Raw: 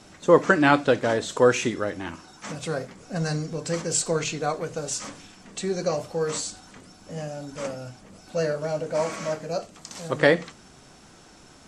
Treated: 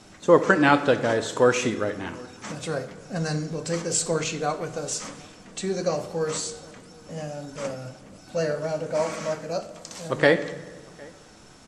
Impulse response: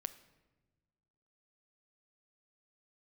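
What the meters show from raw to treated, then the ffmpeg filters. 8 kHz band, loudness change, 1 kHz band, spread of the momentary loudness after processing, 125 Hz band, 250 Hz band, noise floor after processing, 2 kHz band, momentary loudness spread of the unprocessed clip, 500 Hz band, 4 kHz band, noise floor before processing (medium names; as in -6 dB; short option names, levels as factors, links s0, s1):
0.0 dB, 0.0 dB, 0.0 dB, 19 LU, -0.5 dB, 0.0 dB, -49 dBFS, 0.0 dB, 18 LU, 0.0 dB, 0.0 dB, -51 dBFS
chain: -filter_complex "[0:a]asplit=2[s0][s1];[s1]adelay=758,volume=0.0562,highshelf=f=4000:g=-17.1[s2];[s0][s2]amix=inputs=2:normalize=0[s3];[1:a]atrim=start_sample=2205,asetrate=32634,aresample=44100[s4];[s3][s4]afir=irnorm=-1:irlink=0,volume=1.12"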